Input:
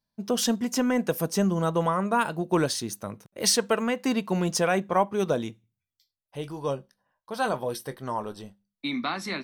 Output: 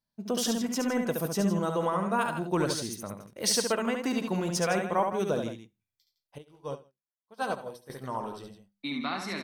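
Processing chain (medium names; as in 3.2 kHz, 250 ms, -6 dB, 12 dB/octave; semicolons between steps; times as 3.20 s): loudspeakers at several distances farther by 24 m -5 dB, 55 m -11 dB; 6.38–7.90 s: upward expansion 2.5:1, over -45 dBFS; trim -4.5 dB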